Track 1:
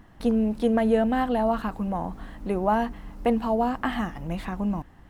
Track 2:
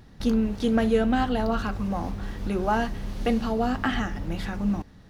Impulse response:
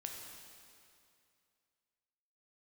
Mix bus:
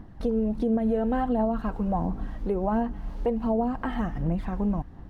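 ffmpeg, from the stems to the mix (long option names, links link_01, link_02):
-filter_complex "[0:a]aphaser=in_gain=1:out_gain=1:delay=2.3:decay=0.41:speed=1.4:type=sinusoidal,volume=-4.5dB,asplit=2[link_01][link_02];[1:a]highpass=960,volume=-1,volume=-9dB,asplit=2[link_03][link_04];[link_04]volume=-9dB[link_05];[link_02]apad=whole_len=224620[link_06];[link_03][link_06]sidechaincompress=threshold=-36dB:ratio=8:attack=16:release=209[link_07];[2:a]atrim=start_sample=2205[link_08];[link_05][link_08]afir=irnorm=-1:irlink=0[link_09];[link_01][link_07][link_09]amix=inputs=3:normalize=0,tiltshelf=frequency=1300:gain=8,alimiter=limit=-17dB:level=0:latency=1:release=240"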